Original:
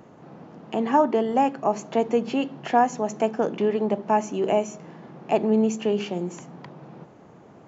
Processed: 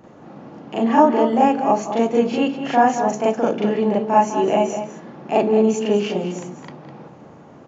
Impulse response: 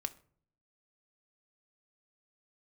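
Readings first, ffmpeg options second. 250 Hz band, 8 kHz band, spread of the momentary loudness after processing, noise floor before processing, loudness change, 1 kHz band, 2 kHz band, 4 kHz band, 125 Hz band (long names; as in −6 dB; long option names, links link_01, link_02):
+5.5 dB, can't be measured, 14 LU, −50 dBFS, +5.5 dB, +6.0 dB, +6.0 dB, +5.5 dB, +4.5 dB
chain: -filter_complex "[0:a]asplit=2[link_01][link_02];[link_02]adelay=204.1,volume=-9dB,highshelf=frequency=4000:gain=-4.59[link_03];[link_01][link_03]amix=inputs=2:normalize=0,asplit=2[link_04][link_05];[1:a]atrim=start_sample=2205,adelay=39[link_06];[link_05][link_06]afir=irnorm=-1:irlink=0,volume=5.5dB[link_07];[link_04][link_07]amix=inputs=2:normalize=0,aresample=16000,aresample=44100,volume=-1dB"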